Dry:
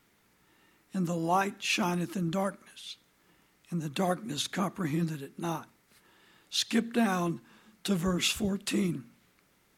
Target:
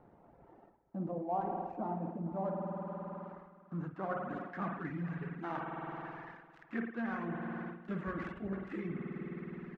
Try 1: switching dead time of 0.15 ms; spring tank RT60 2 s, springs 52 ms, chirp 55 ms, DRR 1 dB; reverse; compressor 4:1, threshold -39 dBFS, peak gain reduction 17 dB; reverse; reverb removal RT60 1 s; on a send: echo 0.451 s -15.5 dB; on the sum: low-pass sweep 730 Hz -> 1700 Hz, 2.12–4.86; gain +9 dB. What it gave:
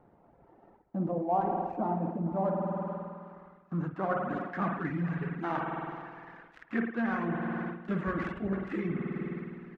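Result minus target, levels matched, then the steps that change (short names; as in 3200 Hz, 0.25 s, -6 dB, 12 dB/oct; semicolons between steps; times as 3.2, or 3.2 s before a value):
compressor: peak gain reduction -7 dB
change: compressor 4:1, threshold -48 dBFS, peak gain reduction 23.5 dB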